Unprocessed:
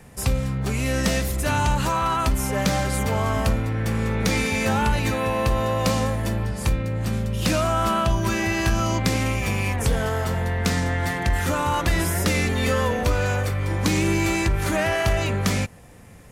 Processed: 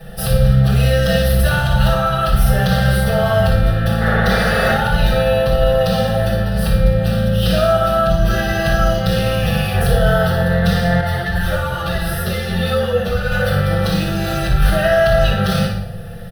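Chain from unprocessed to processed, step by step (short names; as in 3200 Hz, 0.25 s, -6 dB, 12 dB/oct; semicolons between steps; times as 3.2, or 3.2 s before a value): median filter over 3 samples; bell 12000 Hz +5.5 dB 0.23 oct; notches 50/100 Hz; comb 5.9 ms, depth 45%; limiter -19.5 dBFS, peak gain reduction 11 dB; 4–4.72 painted sound noise 260–2300 Hz -30 dBFS; fixed phaser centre 1500 Hz, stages 8; flutter echo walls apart 9.9 m, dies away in 0.49 s; reverb RT60 0.75 s, pre-delay 6 ms, DRR -7.5 dB; 11.01–13.32 ensemble effect; gain +5 dB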